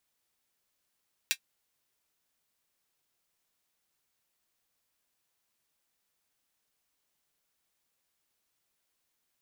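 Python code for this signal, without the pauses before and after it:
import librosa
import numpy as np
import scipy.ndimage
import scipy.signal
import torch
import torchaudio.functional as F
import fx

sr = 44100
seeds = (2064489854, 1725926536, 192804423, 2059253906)

y = fx.drum_hat(sr, length_s=0.24, from_hz=2300.0, decay_s=0.08)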